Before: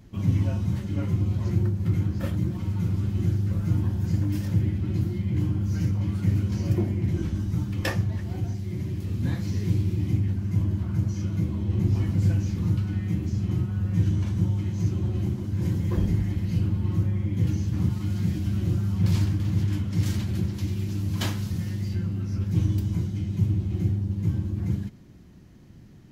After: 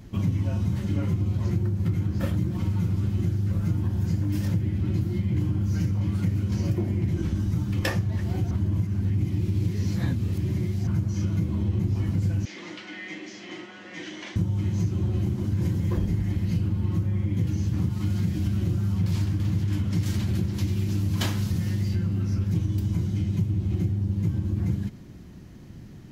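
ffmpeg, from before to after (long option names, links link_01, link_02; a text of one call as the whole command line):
ffmpeg -i in.wav -filter_complex "[0:a]asettb=1/sr,asplit=3[link_01][link_02][link_03];[link_01]atrim=end=12.454[link_04];[link_02]atrim=start=12.45:end=14.36,asetpts=PTS-STARTPTS,afade=type=in:duration=0.004:curve=qsin,afade=type=out:start_time=1.906:duration=0.004:curve=qsin,highpass=frequency=370:width=0.5412,highpass=frequency=370:width=1.3066,equalizer=frequency=440:width_type=q:width=4:gain=-9,equalizer=frequency=920:width_type=q:width=4:gain=-4,equalizer=frequency=1300:width_type=q:width=4:gain=-4,equalizer=frequency=2000:width_type=q:width=4:gain=10,equalizer=frequency=3200:width_type=q:width=4:gain=5,lowpass=frequency=6500:width=0.5412,lowpass=frequency=6500:width=1.3066[link_05];[link_03]atrim=start=14.356[link_06];[link_04][link_05]acrossfade=duration=0.004:curve1=hsin:curve2=qsin[link_07];[link_07][link_06]acrossfade=duration=0.004:curve1=qsin:curve2=hsin,asplit=3[link_08][link_09][link_10];[link_08]atrim=end=8.512[link_11];[link_09]atrim=start=8.508:end=10.872,asetpts=PTS-STARTPTS,areverse[link_12];[link_10]atrim=start=10.868[link_13];[link_11][link_12]acrossfade=duration=0.004:curve1=hsin:curve2=hsin[link_14];[link_14][link_13]acrossfade=duration=0.004:curve1=hsin:curve2=hsin,acompressor=threshold=-27dB:ratio=6,volume=5.5dB" out.wav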